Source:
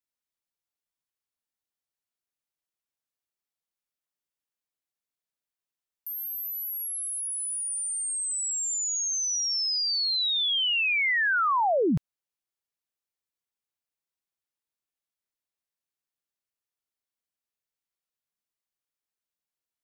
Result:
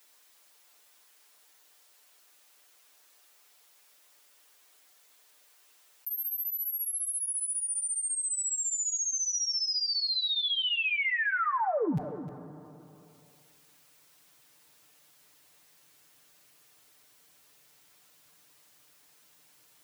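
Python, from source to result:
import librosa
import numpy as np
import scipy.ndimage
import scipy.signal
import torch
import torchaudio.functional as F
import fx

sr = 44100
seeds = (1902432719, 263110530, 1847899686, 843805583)

y = fx.highpass(x, sr, hz=fx.steps((0.0, 420.0), (6.19, 52.0)), slope=12)
y = y + 0.91 * np.pad(y, (int(6.7 * sr / 1000.0), 0))[:len(y)]
y = y + 10.0 ** (-22.0 / 20.0) * np.pad(y, (int(307 * sr / 1000.0), 0))[:len(y)]
y = fx.rev_plate(y, sr, seeds[0], rt60_s=1.6, hf_ratio=0.75, predelay_ms=0, drr_db=19.0)
y = fx.env_flatten(y, sr, amount_pct=50)
y = y * librosa.db_to_amplitude(-8.5)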